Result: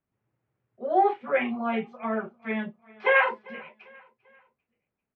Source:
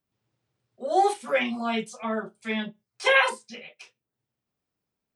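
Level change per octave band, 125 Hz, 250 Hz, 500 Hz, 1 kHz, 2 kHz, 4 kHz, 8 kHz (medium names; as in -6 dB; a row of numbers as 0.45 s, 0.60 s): 0.0 dB, 0.0 dB, 0.0 dB, 0.0 dB, -1.0 dB, -11.0 dB, under -35 dB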